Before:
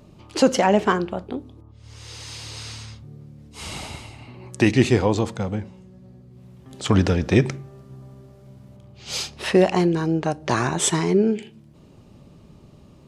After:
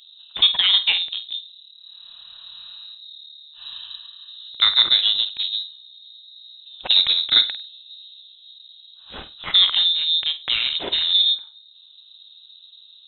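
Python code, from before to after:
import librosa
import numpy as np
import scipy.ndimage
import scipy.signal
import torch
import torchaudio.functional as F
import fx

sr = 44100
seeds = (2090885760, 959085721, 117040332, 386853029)

y = fx.wiener(x, sr, points=25)
y = fx.room_flutter(y, sr, wall_m=8.5, rt60_s=0.24)
y = fx.freq_invert(y, sr, carrier_hz=3900)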